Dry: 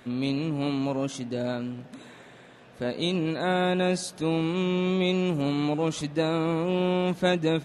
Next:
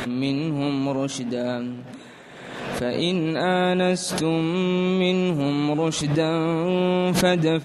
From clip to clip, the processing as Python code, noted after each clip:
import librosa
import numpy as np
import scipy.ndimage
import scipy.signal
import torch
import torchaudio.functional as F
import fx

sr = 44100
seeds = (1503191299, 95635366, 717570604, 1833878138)

y = fx.hum_notches(x, sr, base_hz=60, count=2)
y = fx.pre_swell(y, sr, db_per_s=37.0)
y = y * 10.0 ** (3.5 / 20.0)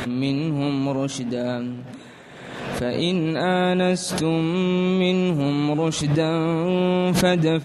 y = fx.peak_eq(x, sr, hz=86.0, db=5.0, octaves=1.7)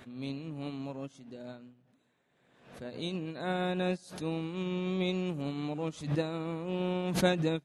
y = fx.upward_expand(x, sr, threshold_db=-32.0, expansion=2.5)
y = y * 10.0 ** (-6.0 / 20.0)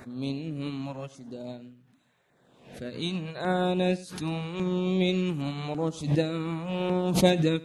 y = fx.filter_lfo_notch(x, sr, shape='saw_down', hz=0.87, low_hz=220.0, high_hz=3300.0, q=1.2)
y = y + 10.0 ** (-19.5 / 20.0) * np.pad(y, (int(97 * sr / 1000.0), 0))[:len(y)]
y = y * 10.0 ** (6.5 / 20.0)